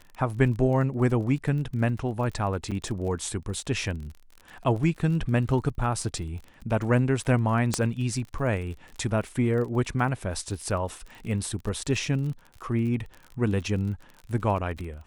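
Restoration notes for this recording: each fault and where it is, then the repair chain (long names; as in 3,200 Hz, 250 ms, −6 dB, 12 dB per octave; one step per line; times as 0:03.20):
surface crackle 34 per second −35 dBFS
0:02.71–0:02.72: drop-out 6.9 ms
0:07.74: click −10 dBFS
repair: click removal
repair the gap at 0:02.71, 6.9 ms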